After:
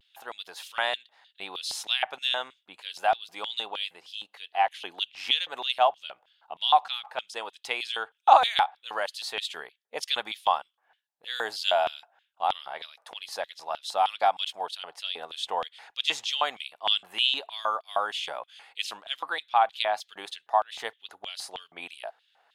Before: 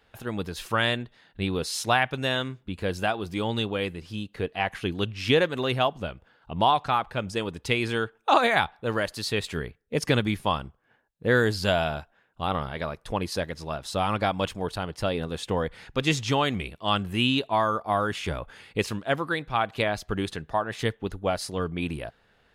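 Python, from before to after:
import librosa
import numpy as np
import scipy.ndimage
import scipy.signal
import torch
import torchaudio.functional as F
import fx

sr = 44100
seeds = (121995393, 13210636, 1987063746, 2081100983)

y = fx.filter_lfo_highpass(x, sr, shape='square', hz=3.2, low_hz=780.0, high_hz=3300.0, q=3.7)
y = fx.vibrato(y, sr, rate_hz=0.31, depth_cents=22.0)
y = y * librosa.db_to_amplitude(-4.5)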